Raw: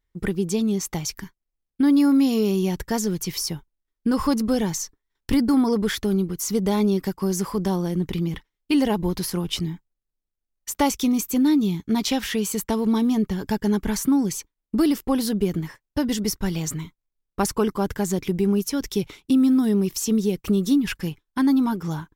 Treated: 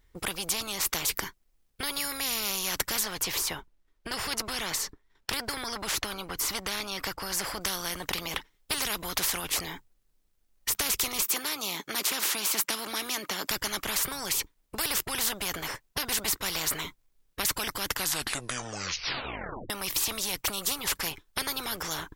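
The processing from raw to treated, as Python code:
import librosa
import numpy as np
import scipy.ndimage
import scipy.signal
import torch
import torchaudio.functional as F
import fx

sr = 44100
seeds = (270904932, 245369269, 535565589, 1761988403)

y = fx.high_shelf(x, sr, hz=5100.0, db=-10.5, at=(3.03, 7.61))
y = fx.highpass(y, sr, hz=240.0, slope=24, at=(11.22, 13.51))
y = fx.edit(y, sr, fx.tape_stop(start_s=17.87, length_s=1.83), tone=tone)
y = fx.spectral_comp(y, sr, ratio=10.0)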